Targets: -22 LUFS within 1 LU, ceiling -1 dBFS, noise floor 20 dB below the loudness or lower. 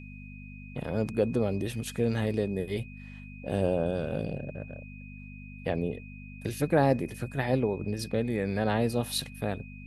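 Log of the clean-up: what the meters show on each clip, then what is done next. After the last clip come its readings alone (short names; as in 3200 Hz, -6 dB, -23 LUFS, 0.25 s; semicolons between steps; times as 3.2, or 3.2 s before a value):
hum 50 Hz; harmonics up to 250 Hz; hum level -42 dBFS; steady tone 2500 Hz; tone level -50 dBFS; loudness -30.0 LUFS; peak -12.0 dBFS; loudness target -22.0 LUFS
-> de-hum 50 Hz, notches 5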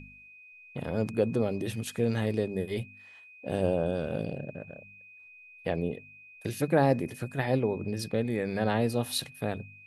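hum none; steady tone 2500 Hz; tone level -50 dBFS
-> notch 2500 Hz, Q 30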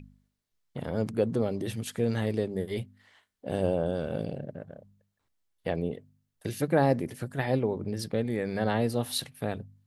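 steady tone none; loudness -30.5 LUFS; peak -12.0 dBFS; loudness target -22.0 LUFS
-> gain +8.5 dB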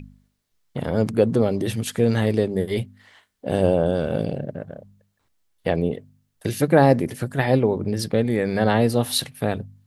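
loudness -22.0 LUFS; peak -3.5 dBFS; noise floor -72 dBFS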